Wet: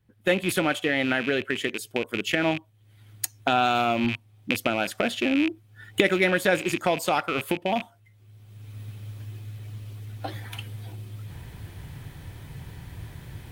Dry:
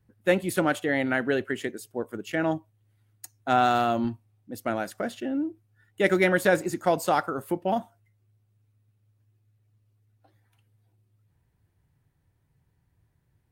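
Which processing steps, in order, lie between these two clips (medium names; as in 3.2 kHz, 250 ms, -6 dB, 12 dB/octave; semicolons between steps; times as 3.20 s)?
rattle on loud lows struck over -42 dBFS, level -26 dBFS; recorder AGC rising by 27 dB/s; peaking EQ 3 kHz +8.5 dB 0.83 oct; band-stop 2.8 kHz, Q 15; trim -1.5 dB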